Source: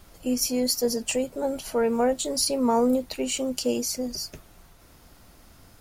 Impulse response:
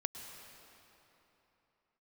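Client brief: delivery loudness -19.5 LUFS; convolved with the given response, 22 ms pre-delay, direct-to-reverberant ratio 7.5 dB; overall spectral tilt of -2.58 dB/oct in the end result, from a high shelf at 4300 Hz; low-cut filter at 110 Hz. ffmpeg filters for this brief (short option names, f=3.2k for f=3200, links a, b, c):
-filter_complex "[0:a]highpass=110,highshelf=f=4.3k:g=3.5,asplit=2[a][b];[1:a]atrim=start_sample=2205,adelay=22[c];[b][c]afir=irnorm=-1:irlink=0,volume=-7.5dB[d];[a][d]amix=inputs=2:normalize=0,volume=4.5dB"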